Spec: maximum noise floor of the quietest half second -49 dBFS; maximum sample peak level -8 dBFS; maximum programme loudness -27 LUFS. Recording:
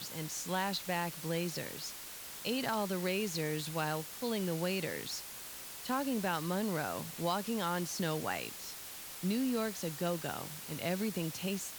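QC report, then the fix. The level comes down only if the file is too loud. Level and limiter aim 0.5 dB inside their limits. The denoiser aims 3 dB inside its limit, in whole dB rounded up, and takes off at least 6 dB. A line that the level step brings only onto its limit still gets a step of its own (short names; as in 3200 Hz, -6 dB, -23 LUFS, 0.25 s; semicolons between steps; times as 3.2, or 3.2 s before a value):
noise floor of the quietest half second -47 dBFS: fail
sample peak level -20.0 dBFS: OK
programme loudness -36.0 LUFS: OK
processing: denoiser 6 dB, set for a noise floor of -47 dBFS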